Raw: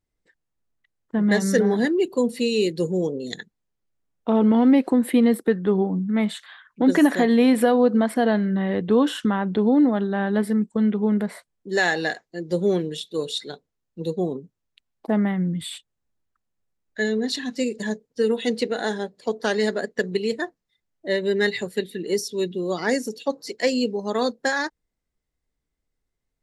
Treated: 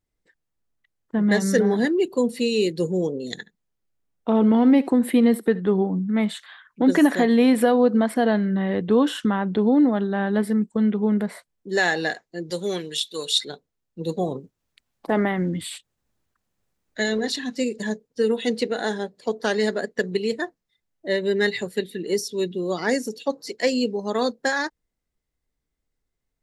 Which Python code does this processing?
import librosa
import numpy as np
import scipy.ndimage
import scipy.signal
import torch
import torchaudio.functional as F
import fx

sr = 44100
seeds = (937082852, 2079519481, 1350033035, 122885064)

y = fx.echo_single(x, sr, ms=73, db=-20.0, at=(3.2, 5.73))
y = fx.tilt_shelf(y, sr, db=-9.0, hz=930.0, at=(12.5, 13.45))
y = fx.spec_clip(y, sr, under_db=12, at=(14.08, 17.31), fade=0.02)